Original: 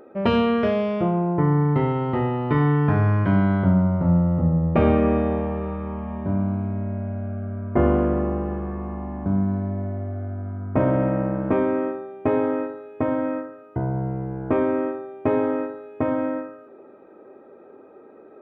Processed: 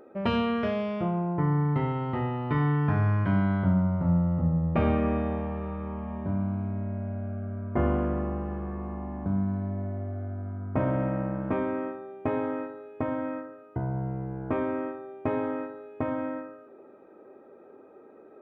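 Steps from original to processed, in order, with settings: dynamic bell 410 Hz, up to -5 dB, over -32 dBFS, Q 1.1; trim -4.5 dB

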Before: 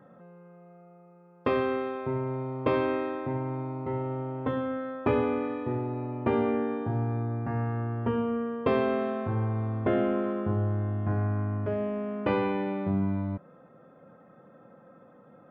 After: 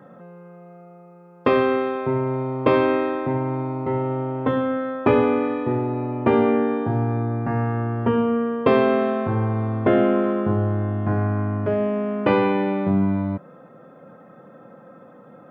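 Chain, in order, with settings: high-pass 110 Hz; trim +8.5 dB

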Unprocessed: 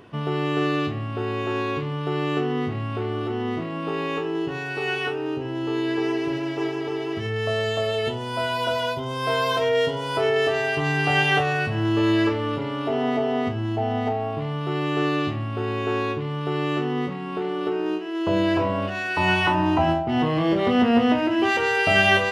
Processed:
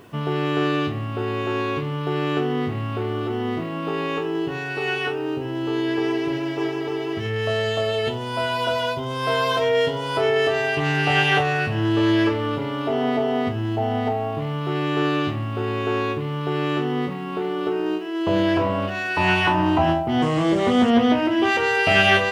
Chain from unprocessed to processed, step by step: bit crusher 10-bit; 20.21–20.89 s: band noise 4.6–8.6 kHz -50 dBFS; loudspeaker Doppler distortion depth 0.15 ms; trim +1.5 dB

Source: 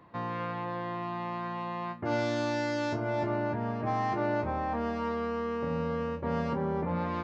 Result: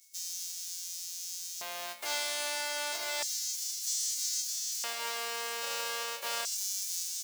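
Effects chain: formants flattened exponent 0.1; whistle 2.2 kHz -52 dBFS; LFO high-pass square 0.31 Hz 570–6100 Hz; trim -5 dB

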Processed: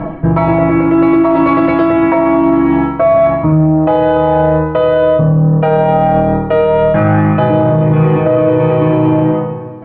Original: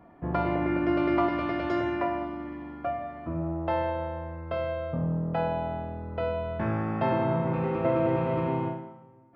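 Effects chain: low-pass 3.6 kHz 24 dB/octave; bass shelf 74 Hz +6 dB; comb 5.9 ms, depth 84%; reverse; compression 12:1, threshold -33 dBFS, peak gain reduction 17.5 dB; reverse; tape speed -5%; phaser 0.26 Hz, delay 4.5 ms, feedback 27%; in parallel at -6 dB: saturation -31.5 dBFS, distortion -16 dB; on the sum: loudness maximiser +27.5 dB; trim -2 dB

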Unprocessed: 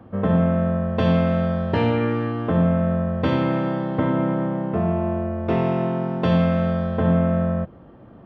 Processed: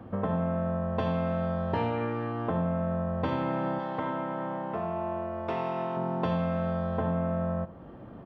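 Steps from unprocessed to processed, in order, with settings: compression 3:1, threshold -32 dBFS, peak gain reduction 13 dB; 3.79–5.97 s: tilt EQ +2.5 dB/octave; delay 80 ms -16 dB; dynamic bell 890 Hz, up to +8 dB, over -52 dBFS, Q 1.5

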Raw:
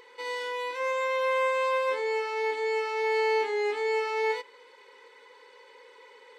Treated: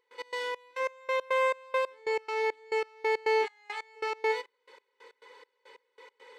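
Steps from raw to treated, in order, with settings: 3.45–3.95 s: high-pass 960 Hz -> 570 Hz 24 dB/octave; trance gate ".x.xx..x." 138 bpm -24 dB

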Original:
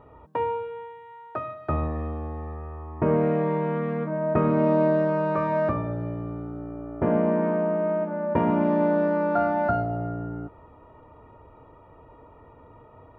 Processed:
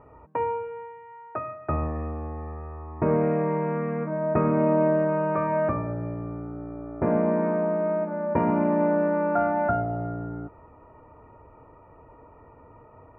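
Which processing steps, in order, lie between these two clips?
elliptic low-pass 2.5 kHz, stop band 60 dB

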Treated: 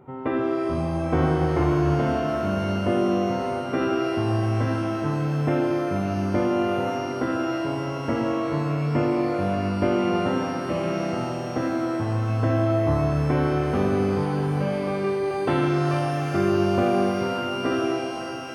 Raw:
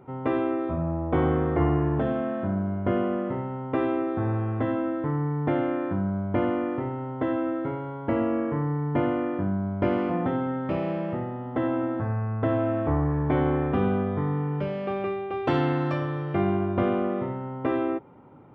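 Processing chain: pitch-shifted reverb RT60 3.6 s, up +12 st, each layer -8 dB, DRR 2 dB

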